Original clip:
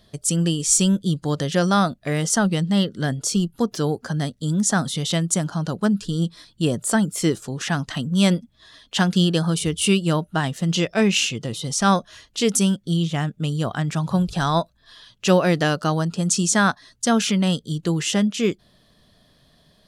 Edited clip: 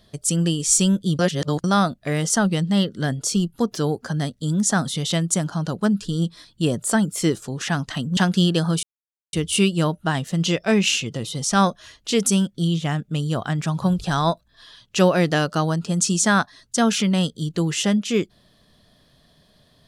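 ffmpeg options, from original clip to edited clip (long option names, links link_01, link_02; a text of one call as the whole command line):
ffmpeg -i in.wav -filter_complex "[0:a]asplit=5[link_01][link_02][link_03][link_04][link_05];[link_01]atrim=end=1.192[link_06];[link_02]atrim=start=1.188:end=1.642,asetpts=PTS-STARTPTS,areverse[link_07];[link_03]atrim=start=1.638:end=8.172[link_08];[link_04]atrim=start=8.958:end=9.62,asetpts=PTS-STARTPTS,afade=type=out:start_time=0.658:duration=0.004:curve=hsin,apad=pad_dur=0.5[link_09];[link_05]atrim=start=9.62,asetpts=PTS-STARTPTS,afade=type=in:duration=0.004:curve=hsin[link_10];[link_06][link_07]acrossfade=duration=0.004:curve1=hsin:curve2=hsin[link_11];[link_11][link_08]acrossfade=duration=0.004:curve1=hsin:curve2=hsin[link_12];[link_09][link_10]concat=n=2:v=0:a=1[link_13];[link_12][link_13]acrossfade=duration=0.004:curve1=hsin:curve2=hsin" out.wav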